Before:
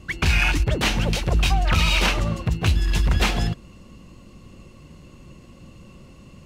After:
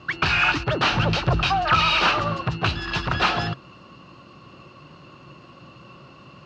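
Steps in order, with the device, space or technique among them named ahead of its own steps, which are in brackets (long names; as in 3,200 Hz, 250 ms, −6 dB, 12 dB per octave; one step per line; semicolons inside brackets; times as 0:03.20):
0:00.92–0:01.42: low-shelf EQ 170 Hz +9.5 dB
overdrive pedal into a guitar cabinet (mid-hump overdrive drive 14 dB, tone 5,500 Hz, clips at −8.5 dBFS; loudspeaker in its box 100–4,600 Hz, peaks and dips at 130 Hz +6 dB, 220 Hz −6 dB, 480 Hz −5 dB, 1,300 Hz +6 dB, 2,100 Hz −9 dB, 3,400 Hz −5 dB)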